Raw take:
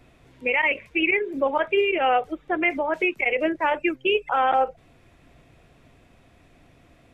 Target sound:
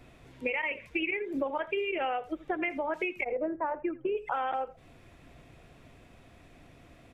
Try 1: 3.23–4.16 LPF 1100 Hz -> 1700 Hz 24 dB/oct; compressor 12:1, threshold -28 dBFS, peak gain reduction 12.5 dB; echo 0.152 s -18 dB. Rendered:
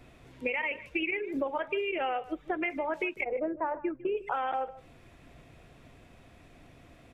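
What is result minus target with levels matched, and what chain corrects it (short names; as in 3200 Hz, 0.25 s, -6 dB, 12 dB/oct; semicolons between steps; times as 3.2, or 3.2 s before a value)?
echo 69 ms late
3.23–4.16 LPF 1100 Hz -> 1700 Hz 24 dB/oct; compressor 12:1, threshold -28 dBFS, peak gain reduction 12.5 dB; echo 83 ms -18 dB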